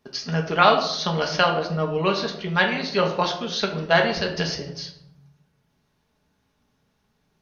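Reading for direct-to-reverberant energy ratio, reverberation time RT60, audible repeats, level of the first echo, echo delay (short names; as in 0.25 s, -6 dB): 1.0 dB, 0.70 s, none, none, none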